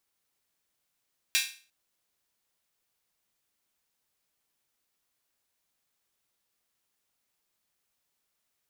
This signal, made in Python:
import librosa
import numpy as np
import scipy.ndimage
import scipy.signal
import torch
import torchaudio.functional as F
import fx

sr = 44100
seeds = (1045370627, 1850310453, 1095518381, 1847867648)

y = fx.drum_hat_open(sr, length_s=0.35, from_hz=2400.0, decay_s=0.39)